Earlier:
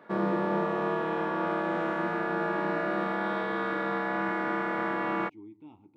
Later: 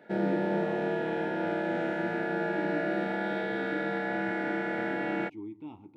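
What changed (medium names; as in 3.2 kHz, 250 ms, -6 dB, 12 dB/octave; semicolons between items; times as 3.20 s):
speech +6.5 dB; background: add Butterworth band-stop 1.1 kHz, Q 2.1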